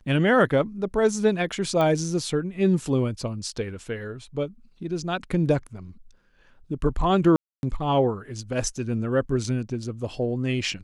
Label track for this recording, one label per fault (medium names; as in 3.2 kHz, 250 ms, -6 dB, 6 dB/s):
1.810000	1.810000	pop -14 dBFS
7.360000	7.630000	dropout 271 ms